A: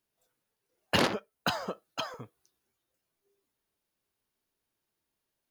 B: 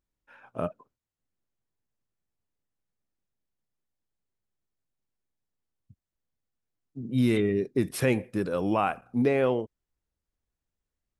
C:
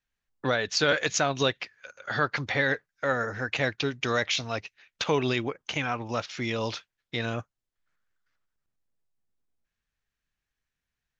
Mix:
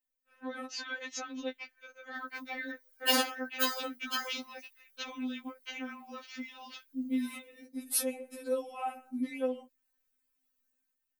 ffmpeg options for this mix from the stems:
ffmpeg -i stem1.wav -i stem2.wav -i stem3.wav -filter_complex "[0:a]adelay=2150,volume=0dB[link_01];[1:a]lowshelf=frequency=370:gain=4.5,acompressor=threshold=-23dB:ratio=6,volume=-9.5dB[link_02];[2:a]bass=frequency=250:gain=13,treble=frequency=4000:gain=-14,acompressor=threshold=-28dB:ratio=6,volume=-12dB[link_03];[link_02][link_03]amix=inputs=2:normalize=0,dynaudnorm=framelen=160:gausssize=7:maxgain=9.5dB,alimiter=level_in=0.5dB:limit=-24dB:level=0:latency=1:release=111,volume=-0.5dB,volume=0dB[link_04];[link_01][link_04]amix=inputs=2:normalize=0,aemphasis=mode=production:type=bsi,afftfilt=real='re*3.46*eq(mod(b,12),0)':imag='im*3.46*eq(mod(b,12),0)':win_size=2048:overlap=0.75" out.wav

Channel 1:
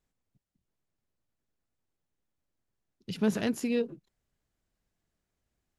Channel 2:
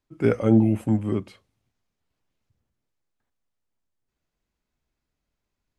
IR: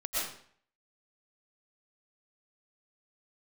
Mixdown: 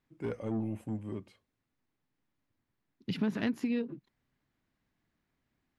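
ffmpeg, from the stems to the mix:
-filter_complex "[0:a]equalizer=frequency=270:width_type=o:width=0.92:gain=12,acompressor=threshold=-27dB:ratio=4,equalizer=frequency=125:width_type=o:width=1:gain=8,equalizer=frequency=1000:width_type=o:width=1:gain=8,equalizer=frequency=2000:width_type=o:width=1:gain=9,equalizer=frequency=4000:width_type=o:width=1:gain=5,equalizer=frequency=8000:width_type=o:width=1:gain=-6,volume=-5dB[link_01];[1:a]asoftclip=type=tanh:threshold=-14.5dB,bandreject=frequency=1300:width=12,volume=-13dB[link_02];[link_01][link_02]amix=inputs=2:normalize=0"

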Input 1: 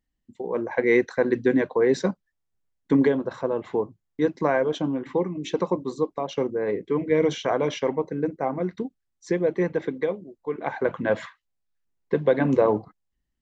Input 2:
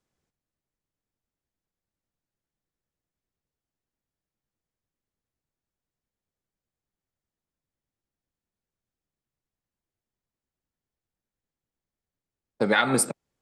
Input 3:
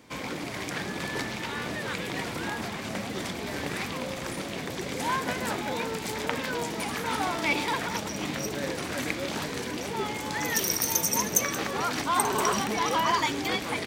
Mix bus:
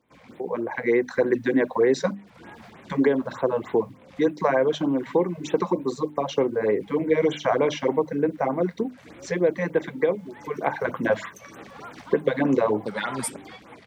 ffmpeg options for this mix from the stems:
ffmpeg -i stem1.wav -i stem2.wav -i stem3.wav -filter_complex "[0:a]acrossover=split=210|1700[link_01][link_02][link_03];[link_01]acompressor=threshold=-41dB:ratio=4[link_04];[link_02]acompressor=threshold=-21dB:ratio=4[link_05];[link_03]acompressor=threshold=-38dB:ratio=4[link_06];[link_04][link_05][link_06]amix=inputs=3:normalize=0,acrusher=bits=11:mix=0:aa=0.000001,volume=1dB,asplit=2[link_07][link_08];[1:a]agate=range=-18dB:threshold=-49dB:ratio=16:detection=peak,adelay=250,volume=-10dB[link_09];[2:a]lowpass=frequency=2300:poles=1,volume=-14dB[link_10];[link_08]apad=whole_len=611252[link_11];[link_10][link_11]sidechaincompress=threshold=-38dB:ratio=12:attack=7.3:release=286[link_12];[link_07][link_09][link_12]amix=inputs=3:normalize=0,bandreject=frequency=50:width_type=h:width=6,bandreject=frequency=100:width_type=h:width=6,bandreject=frequency=150:width_type=h:width=6,bandreject=frequency=200:width_type=h:width=6,bandreject=frequency=250:width_type=h:width=6,bandreject=frequency=300:width_type=h:width=6,dynaudnorm=framelen=580:gausssize=3:maxgain=4dB,afftfilt=real='re*(1-between(b*sr/1024,290*pow(6000/290,0.5+0.5*sin(2*PI*3.3*pts/sr))/1.41,290*pow(6000/290,0.5+0.5*sin(2*PI*3.3*pts/sr))*1.41))':imag='im*(1-between(b*sr/1024,290*pow(6000/290,0.5+0.5*sin(2*PI*3.3*pts/sr))/1.41,290*pow(6000/290,0.5+0.5*sin(2*PI*3.3*pts/sr))*1.41))':win_size=1024:overlap=0.75" out.wav

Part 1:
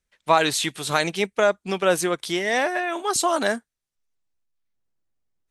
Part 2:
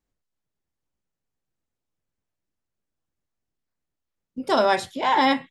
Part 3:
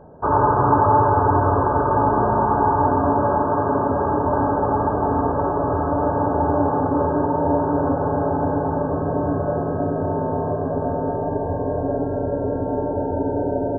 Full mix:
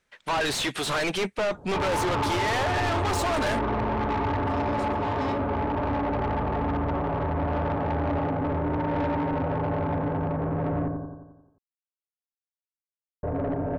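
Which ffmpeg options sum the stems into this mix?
ffmpeg -i stem1.wav -i stem2.wav -i stem3.wav -filter_complex "[0:a]asplit=2[link_01][link_02];[link_02]highpass=frequency=720:poles=1,volume=29dB,asoftclip=type=tanh:threshold=-3.5dB[link_03];[link_01][link_03]amix=inputs=2:normalize=0,lowpass=frequency=1600:poles=1,volume=-6dB,volume=-6.5dB,asplit=2[link_04][link_05];[1:a]alimiter=limit=-17.5dB:level=0:latency=1,volume=-7.5dB[link_06];[2:a]adelay=1500,volume=-5dB,asplit=3[link_07][link_08][link_09];[link_07]atrim=end=10.88,asetpts=PTS-STARTPTS,afade=type=out:start_time=10.876:duration=0.004:curve=hsin[link_10];[link_08]atrim=start=10.88:end=13.23,asetpts=PTS-STARTPTS,volume=0[link_11];[link_09]atrim=start=13.23,asetpts=PTS-STARTPTS,afade=type=in:duration=0.004:curve=hsin[link_12];[link_10][link_11][link_12]concat=n=3:v=0:a=1,asplit=2[link_13][link_14];[link_14]volume=-6.5dB[link_15];[link_05]apad=whole_len=242593[link_16];[link_06][link_16]sidechaincompress=threshold=-36dB:ratio=8:attack=16:release=1430[link_17];[link_15]aecho=0:1:88|176|264|352|440|528|616|704:1|0.56|0.314|0.176|0.0983|0.0551|0.0308|0.0173[link_18];[link_04][link_17][link_13][link_18]amix=inputs=4:normalize=0,lowshelf=frequency=160:gain=6.5,asoftclip=type=tanh:threshold=-23dB" out.wav

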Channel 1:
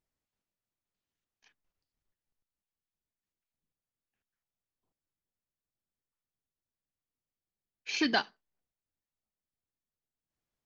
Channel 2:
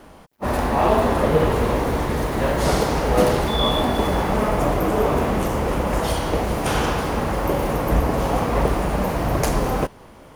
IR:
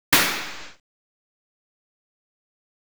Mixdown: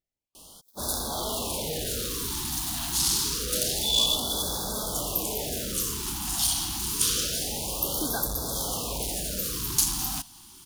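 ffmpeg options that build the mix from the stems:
-filter_complex "[0:a]deesser=0.95,volume=-3.5dB[link_01];[1:a]asoftclip=type=tanh:threshold=-18dB,aexciter=amount=12.4:drive=3.9:freq=3100,adelay=350,volume=-11.5dB[link_02];[link_01][link_02]amix=inputs=2:normalize=0,afftfilt=real='re*(1-between(b*sr/1024,480*pow(2400/480,0.5+0.5*sin(2*PI*0.27*pts/sr))/1.41,480*pow(2400/480,0.5+0.5*sin(2*PI*0.27*pts/sr))*1.41))':imag='im*(1-between(b*sr/1024,480*pow(2400/480,0.5+0.5*sin(2*PI*0.27*pts/sr))/1.41,480*pow(2400/480,0.5+0.5*sin(2*PI*0.27*pts/sr))*1.41))':win_size=1024:overlap=0.75"

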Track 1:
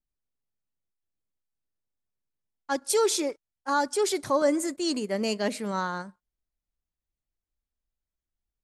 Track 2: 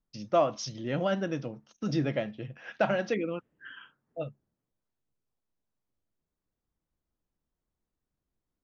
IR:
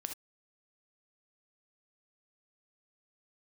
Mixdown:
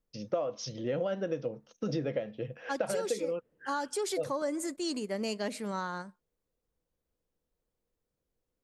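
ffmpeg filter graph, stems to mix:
-filter_complex "[0:a]volume=-4.5dB[link_01];[1:a]equalizer=frequency=490:width_type=o:width=0.44:gain=13,volume=-1dB[link_02];[link_01][link_02]amix=inputs=2:normalize=0,acompressor=threshold=-29dB:ratio=6"

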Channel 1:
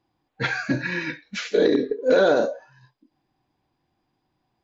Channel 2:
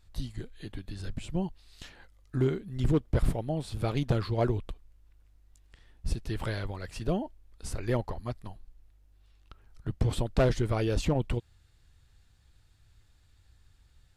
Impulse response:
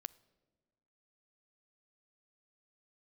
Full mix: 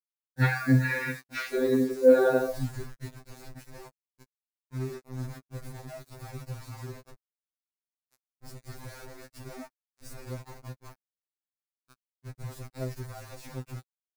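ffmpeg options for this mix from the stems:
-filter_complex "[0:a]lowpass=3400,adynamicequalizer=threshold=0.0126:dfrequency=130:dqfactor=1.4:tfrequency=130:tqfactor=1.4:attack=5:release=100:ratio=0.375:range=2:mode=boostabove:tftype=bell,acompressor=threshold=-20dB:ratio=6,volume=3dB,asplit=2[link_01][link_02];[1:a]lowshelf=frequency=440:gain=3,alimiter=limit=-23dB:level=0:latency=1:release=81,adelay=2400,volume=3dB[link_03];[link_02]apad=whole_len=730551[link_04];[link_03][link_04]sidechaingate=range=-11dB:threshold=-56dB:ratio=16:detection=peak[link_05];[link_01][link_05]amix=inputs=2:normalize=0,acrusher=bits=6:mix=0:aa=0.000001,equalizer=frequency=3100:width_type=o:width=0.38:gain=-11.5,afftfilt=real='re*2.45*eq(mod(b,6),0)':imag='im*2.45*eq(mod(b,6),0)':win_size=2048:overlap=0.75"

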